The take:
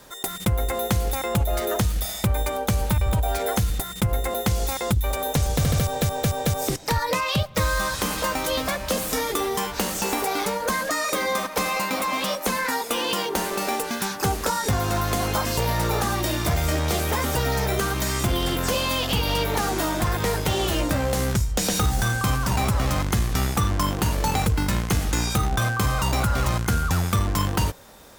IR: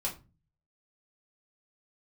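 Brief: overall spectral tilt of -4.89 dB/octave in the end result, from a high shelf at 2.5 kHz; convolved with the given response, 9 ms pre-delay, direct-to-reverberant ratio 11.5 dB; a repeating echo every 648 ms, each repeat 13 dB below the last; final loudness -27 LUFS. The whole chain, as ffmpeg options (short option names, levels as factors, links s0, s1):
-filter_complex "[0:a]highshelf=f=2500:g=-3.5,aecho=1:1:648|1296|1944:0.224|0.0493|0.0108,asplit=2[s0][s1];[1:a]atrim=start_sample=2205,adelay=9[s2];[s1][s2]afir=irnorm=-1:irlink=0,volume=0.178[s3];[s0][s3]amix=inputs=2:normalize=0,volume=0.708"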